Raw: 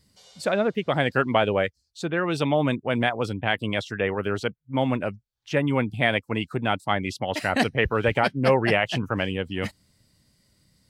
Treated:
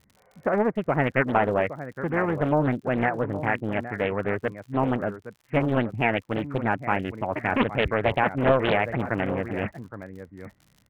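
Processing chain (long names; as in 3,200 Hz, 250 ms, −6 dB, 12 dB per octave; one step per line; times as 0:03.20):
Butterworth low-pass 2,100 Hz 72 dB per octave
surface crackle 76 per second −41 dBFS
slap from a distant wall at 140 metres, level −12 dB
highs frequency-modulated by the lows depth 0.78 ms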